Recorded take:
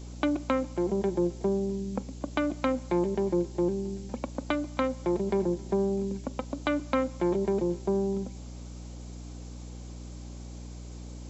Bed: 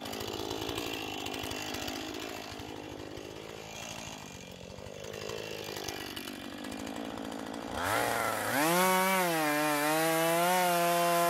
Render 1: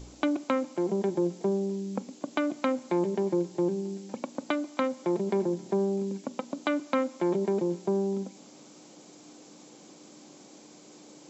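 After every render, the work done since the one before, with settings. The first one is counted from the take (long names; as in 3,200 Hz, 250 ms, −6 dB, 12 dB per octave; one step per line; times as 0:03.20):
hum removal 60 Hz, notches 4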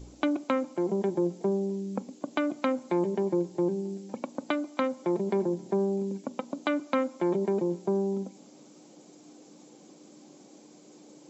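broadband denoise 6 dB, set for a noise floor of −52 dBFS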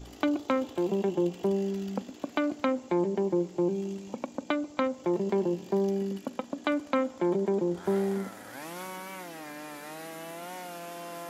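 mix in bed −13.5 dB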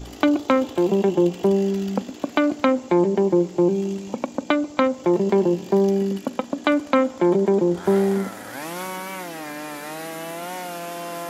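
level +9 dB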